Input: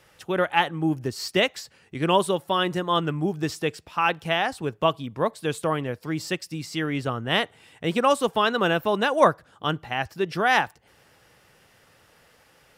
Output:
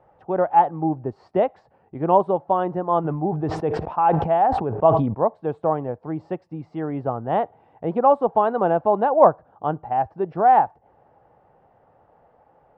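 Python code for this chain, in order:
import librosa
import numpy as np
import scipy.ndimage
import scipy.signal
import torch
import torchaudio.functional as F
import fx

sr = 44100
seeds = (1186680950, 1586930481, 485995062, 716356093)

y = fx.lowpass_res(x, sr, hz=790.0, q=3.4)
y = fx.sustainer(y, sr, db_per_s=52.0, at=(3.04, 5.13), fade=0.02)
y = F.gain(torch.from_numpy(y), -1.0).numpy()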